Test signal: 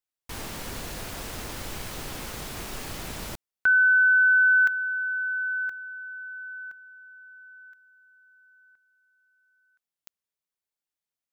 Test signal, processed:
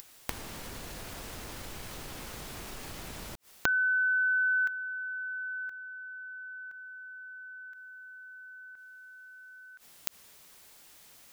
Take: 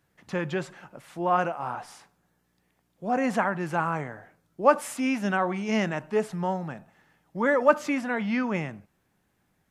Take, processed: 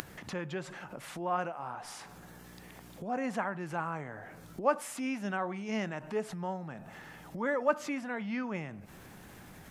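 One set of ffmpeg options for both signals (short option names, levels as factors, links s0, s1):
-af "acompressor=mode=upward:threshold=0.0224:ratio=4:attack=26:release=65:knee=2.83:detection=peak,volume=0.376"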